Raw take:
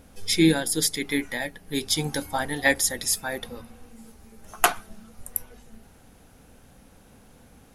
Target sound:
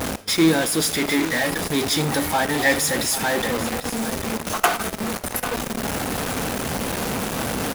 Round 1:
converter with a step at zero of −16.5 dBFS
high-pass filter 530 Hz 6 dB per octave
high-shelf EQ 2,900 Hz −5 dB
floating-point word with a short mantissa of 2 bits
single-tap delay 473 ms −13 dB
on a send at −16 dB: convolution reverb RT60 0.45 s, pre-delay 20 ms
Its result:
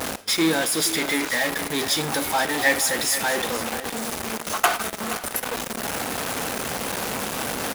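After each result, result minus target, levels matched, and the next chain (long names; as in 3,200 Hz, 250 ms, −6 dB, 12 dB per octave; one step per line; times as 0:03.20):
echo 323 ms early; 125 Hz band −7.0 dB
converter with a step at zero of −16.5 dBFS
high-pass filter 530 Hz 6 dB per octave
high-shelf EQ 2,900 Hz −5 dB
floating-point word with a short mantissa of 2 bits
single-tap delay 796 ms −13 dB
on a send at −16 dB: convolution reverb RT60 0.45 s, pre-delay 20 ms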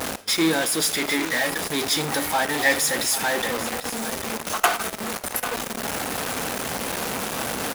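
125 Hz band −6.5 dB
converter with a step at zero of −16.5 dBFS
high-pass filter 160 Hz 6 dB per octave
high-shelf EQ 2,900 Hz −5 dB
floating-point word with a short mantissa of 2 bits
single-tap delay 796 ms −13 dB
on a send at −16 dB: convolution reverb RT60 0.45 s, pre-delay 20 ms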